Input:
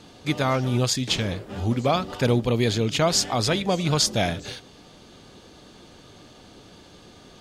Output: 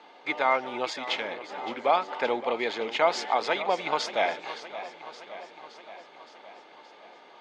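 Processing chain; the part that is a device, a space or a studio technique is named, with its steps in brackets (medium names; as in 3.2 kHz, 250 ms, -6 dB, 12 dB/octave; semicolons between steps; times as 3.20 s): high-pass 210 Hz 12 dB/octave; tin-can telephone (band-pass 540–2500 Hz; small resonant body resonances 870/2100 Hz, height 9 dB, ringing for 25 ms); modulated delay 569 ms, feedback 63%, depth 80 cents, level -14 dB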